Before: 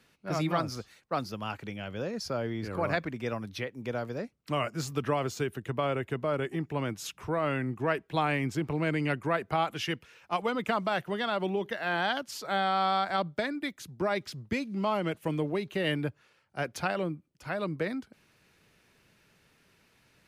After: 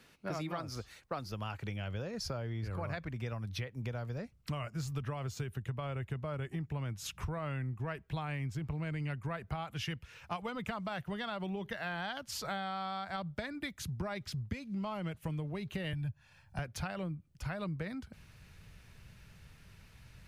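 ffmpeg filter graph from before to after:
ffmpeg -i in.wav -filter_complex "[0:a]asettb=1/sr,asplit=3[link_01][link_02][link_03];[link_01]atrim=end=15.934[link_04];[link_02]atrim=start=15.93:end=16.59,asetpts=PTS-STARTPTS,afade=type=in:duration=0.004:curve=qsin,afade=type=out:start_time=0.656:duration=0.004:curve=qsin,aecho=1:1:1.2:0.68,atrim=end_sample=29106,acrossover=split=180|3000[link_05][link_06][link_07];[link_06]acompressor=threshold=-41dB:ratio=3:attack=3.2:release=140:knee=2.83:detection=peak[link_08];[link_05][link_08][link_07]amix=inputs=3:normalize=0[link_09];[link_03]atrim=start=16.586[link_10];[link_04][link_09]acrossfade=duration=0.004:curve1=hsin:curve2=qsin[link_11];[link_11][link_10]acrossfade=duration=0.004:curve1=qsin:curve2=hsin,asubboost=boost=10:cutoff=99,acompressor=threshold=-39dB:ratio=6,volume=3dB" out.wav

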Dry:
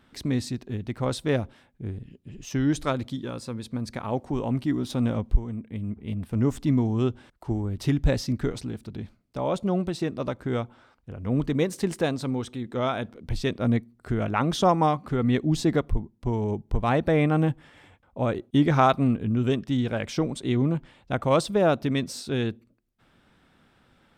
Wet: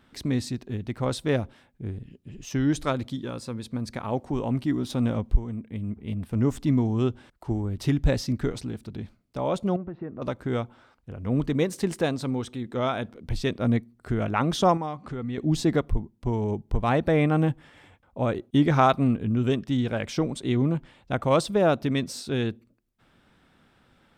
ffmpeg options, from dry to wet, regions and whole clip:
ffmpeg -i in.wav -filter_complex "[0:a]asettb=1/sr,asplit=3[link_01][link_02][link_03];[link_01]atrim=end=9.764[link_04];[link_02]atrim=start=9.76:end=10.22,asetpts=PTS-STARTPTS,afade=type=in:duration=0.004:curve=qsin,afade=type=out:start_time=0.456:duration=0.004:curve=qsin,lowpass=frequency=1700:width=0.5412,lowpass=frequency=1700:width=1.3066,acompressor=threshold=-36dB:ratio=2:attack=3.2:release=140:knee=1:detection=peak[link_05];[link_03]atrim=start=10.216[link_06];[link_04][link_05]acrossfade=duration=0.004:curve1=hsin:curve2=qsin[link_07];[link_07][link_06]acrossfade=duration=0.004:curve1=qsin:curve2=hsin,asettb=1/sr,asplit=3[link_08][link_09][link_10];[link_08]atrim=end=14.774[link_11];[link_09]atrim=start=14.77:end=15.38,asetpts=PTS-STARTPTS,afade=type=in:duration=0.004:curve=qsin,afade=type=out:start_time=0.606:duration=0.004:curve=qsin,lowpass=frequency=9000:width=0.5412,lowpass=frequency=9000:width=1.3066,acompressor=threshold=-35dB:ratio=2:attack=3.2:release=140:knee=1:detection=peak[link_12];[link_10]atrim=start=15.376[link_13];[link_11][link_12]acrossfade=duration=0.004:curve1=hsin:curve2=qsin[link_14];[link_14][link_13]acrossfade=duration=0.004:curve1=qsin:curve2=hsin" out.wav

